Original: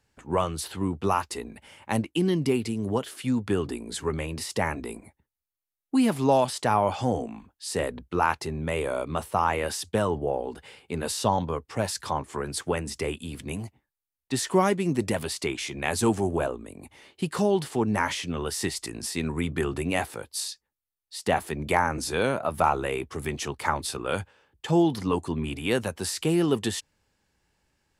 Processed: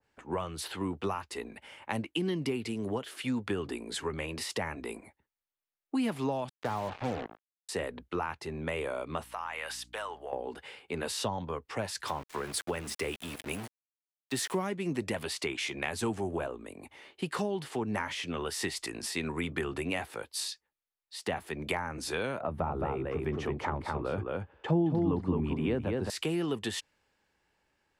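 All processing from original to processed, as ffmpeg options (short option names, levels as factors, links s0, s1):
-filter_complex "[0:a]asettb=1/sr,asplit=3[s0][s1][s2];[s0]atrim=end=6.494[s3];[s1]atrim=start=6.49:end=7.69,asetpts=PTS-STARTPTS,afade=t=in:d=0.004:c=qsin,afade=t=out:st=1.196:d=0.004:c=qsin,lowpass=1700,acrusher=bits=4:mix=0:aa=0.5[s4];[s2]atrim=start=7.686[s5];[s3][s4]acrossfade=d=0.004:c1=hsin:c2=qsin[s6];[s6][s5]acrossfade=d=0.004:c1=qsin:c2=hsin,asettb=1/sr,asplit=3[s7][s8][s9];[s7]atrim=end=9.244[s10];[s8]atrim=start=9.24:end=10.33,asetpts=PTS-STARTPTS,afade=t=in:d=0.004:c=qsin,afade=t=out:st=1.086:d=0.004:c=qsin,highpass=920,acompressor=threshold=0.0178:ratio=2.5:attack=3.2:release=140:knee=1:detection=peak,aeval=exprs='val(0)+0.00282*(sin(2*PI*60*n/s)+sin(2*PI*2*60*n/s)/2+sin(2*PI*3*60*n/s)/3+sin(2*PI*4*60*n/s)/4+sin(2*PI*5*60*n/s)/5)':c=same[s11];[s9]atrim=start=10.326[s12];[s10][s11]acrossfade=d=0.004:c1=hsin:c2=qsin[s13];[s13][s12]acrossfade=d=0.004:c1=qsin:c2=hsin,asettb=1/sr,asplit=3[s14][s15][s16];[s14]atrim=end=12.074[s17];[s15]atrim=start=12.07:end=14.67,asetpts=PTS-STARTPTS,afade=t=in:d=0.004:c=qsin,afade=t=out:st=2.596:d=0.004:c=qsin,equalizer=f=13000:w=0.67:g=7,aeval=exprs='val(0)*gte(abs(val(0)),0.0133)':c=same[s18];[s16]atrim=start=14.666[s19];[s17][s18]acrossfade=d=0.004:c1=hsin:c2=qsin[s20];[s20][s19]acrossfade=d=0.004:c1=qsin:c2=hsin,asettb=1/sr,asplit=3[s21][s22][s23];[s21]atrim=end=22.414[s24];[s22]atrim=start=22.41:end=26.1,asetpts=PTS-STARTPTS,afade=t=in:d=0.004:c=qsin,afade=t=out:st=3.686:d=0.004:c=qsin,lowpass=f=3100:p=1,tiltshelf=f=1200:g=7.5,aecho=1:1:216:0.631,atrim=end_sample=162729[s25];[s23]atrim=start=26.096[s26];[s24][s25]acrossfade=d=0.004:c1=hsin:c2=qsin[s27];[s27][s26]acrossfade=d=0.004:c1=qsin:c2=hsin,bass=f=250:g=-9,treble=f=4000:g=-9,acrossover=split=210[s28][s29];[s29]acompressor=threshold=0.0251:ratio=6[s30];[s28][s30]amix=inputs=2:normalize=0,adynamicequalizer=threshold=0.00398:dfrequency=1600:dqfactor=0.7:tfrequency=1600:tqfactor=0.7:attack=5:release=100:ratio=0.375:range=2:mode=boostabove:tftype=highshelf"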